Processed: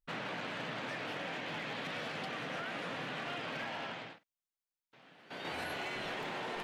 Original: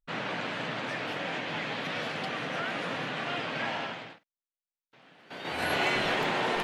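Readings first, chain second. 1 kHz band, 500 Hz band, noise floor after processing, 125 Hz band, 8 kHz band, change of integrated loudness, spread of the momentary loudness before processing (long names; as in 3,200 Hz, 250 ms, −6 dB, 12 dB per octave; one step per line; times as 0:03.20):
−8.5 dB, −8.5 dB, below −85 dBFS, −7.5 dB, −7.5 dB, −8.0 dB, 9 LU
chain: downward compressor 12 to 1, threshold −33 dBFS, peak gain reduction 10 dB
hard clipping −30.5 dBFS, distortion −22 dB
level −3 dB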